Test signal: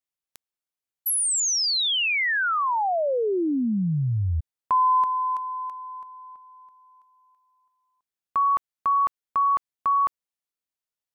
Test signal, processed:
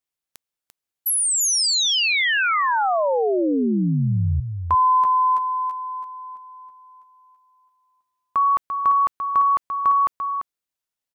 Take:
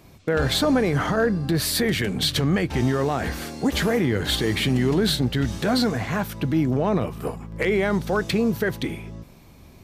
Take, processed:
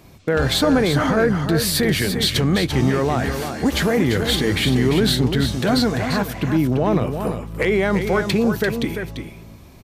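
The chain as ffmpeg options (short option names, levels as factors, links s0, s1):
-af "aecho=1:1:343:0.422,volume=1.41"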